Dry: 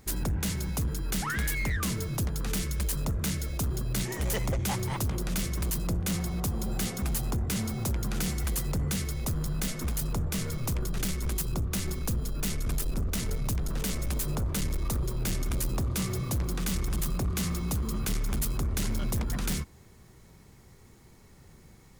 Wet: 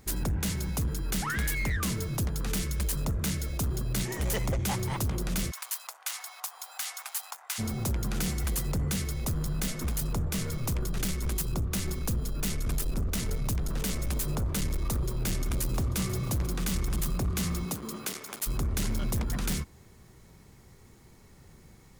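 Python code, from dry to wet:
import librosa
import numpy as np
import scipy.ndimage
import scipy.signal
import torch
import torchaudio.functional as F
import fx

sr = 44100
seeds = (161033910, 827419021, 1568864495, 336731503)

y = fx.steep_highpass(x, sr, hz=790.0, slope=36, at=(5.5, 7.58), fade=0.02)
y = fx.echo_throw(y, sr, start_s=15.14, length_s=0.83, ms=490, feedback_pct=50, wet_db=-16.0)
y = fx.highpass(y, sr, hz=fx.line((17.64, 150.0), (18.46, 630.0)), slope=12, at=(17.64, 18.46), fade=0.02)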